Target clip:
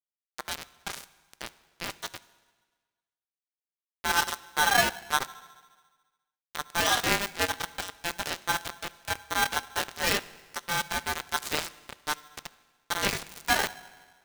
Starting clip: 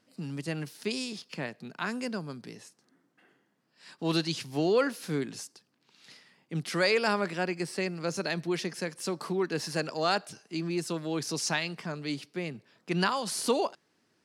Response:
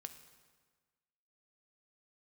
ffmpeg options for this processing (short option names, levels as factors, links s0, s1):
-filter_complex "[0:a]adynamicequalizer=threshold=0.00447:dfrequency=320:dqfactor=5.3:tfrequency=320:tqfactor=5.3:attack=5:release=100:ratio=0.375:range=3.5:mode=boostabove:tftype=bell,flanger=delay=20:depth=6.8:speed=0.38,aeval=exprs='0.501*(cos(1*acos(clip(val(0)/0.501,-1,1)))-cos(1*PI/2))+0.158*(cos(2*acos(clip(val(0)/0.501,-1,1)))-cos(2*PI/2))+0.0158*(cos(3*acos(clip(val(0)/0.501,-1,1)))-cos(3*PI/2))+0.0251*(cos(6*acos(clip(val(0)/0.501,-1,1)))-cos(6*PI/2))':c=same,aeval=exprs='val(0)*gte(abs(val(0)),0.0355)':c=same,asplit=2[s0][s1];[1:a]atrim=start_sample=2205,asetrate=43218,aresample=44100,lowpass=12000[s2];[s1][s2]afir=irnorm=-1:irlink=0,volume=1.19[s3];[s0][s3]amix=inputs=2:normalize=0,aeval=exprs='val(0)*sgn(sin(2*PI*1200*n/s))':c=same"